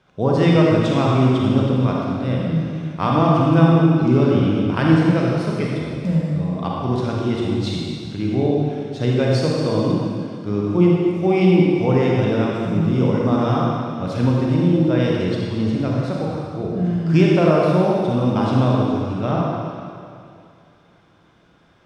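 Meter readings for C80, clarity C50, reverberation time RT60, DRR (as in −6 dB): −0.5 dB, −2.5 dB, 2.4 s, −3.5 dB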